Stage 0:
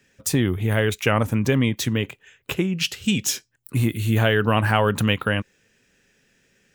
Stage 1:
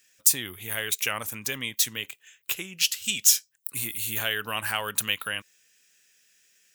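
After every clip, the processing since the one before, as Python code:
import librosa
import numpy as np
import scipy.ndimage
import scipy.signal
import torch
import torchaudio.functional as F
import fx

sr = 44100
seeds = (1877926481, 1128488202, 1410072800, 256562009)

y = F.preemphasis(torch.from_numpy(x), 0.97).numpy()
y = y * librosa.db_to_amplitude(6.5)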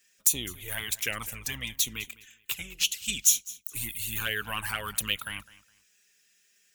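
y = fx.octave_divider(x, sr, octaves=2, level_db=-5.0)
y = fx.env_flanger(y, sr, rest_ms=5.1, full_db=-21.5)
y = fx.echo_feedback(y, sr, ms=207, feedback_pct=25, wet_db=-19.5)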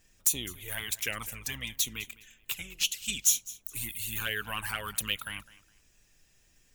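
y = 10.0 ** (-8.5 / 20.0) * np.tanh(x / 10.0 ** (-8.5 / 20.0))
y = fx.dmg_noise_colour(y, sr, seeds[0], colour='brown', level_db=-64.0)
y = y * librosa.db_to_amplitude(-2.0)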